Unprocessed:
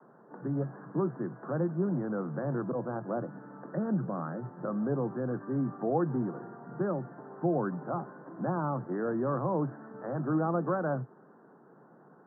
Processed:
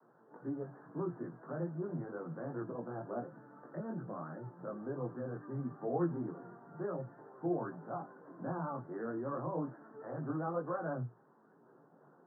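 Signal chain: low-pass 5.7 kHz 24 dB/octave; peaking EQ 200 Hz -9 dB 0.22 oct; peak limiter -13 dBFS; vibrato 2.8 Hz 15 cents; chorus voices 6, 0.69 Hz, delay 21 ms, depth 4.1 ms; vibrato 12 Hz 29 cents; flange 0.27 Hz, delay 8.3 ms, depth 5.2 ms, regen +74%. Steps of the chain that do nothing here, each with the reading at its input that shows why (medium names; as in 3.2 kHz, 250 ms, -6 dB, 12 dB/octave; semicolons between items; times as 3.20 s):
low-pass 5.7 kHz: input has nothing above 1.7 kHz; peak limiter -13 dBFS: peak at its input -16.0 dBFS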